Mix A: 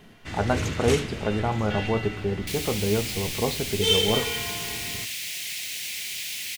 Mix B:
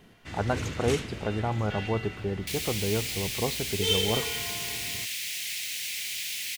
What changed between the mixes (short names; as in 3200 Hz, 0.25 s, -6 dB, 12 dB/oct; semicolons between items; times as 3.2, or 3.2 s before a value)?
first sound -3.5 dB; reverb: off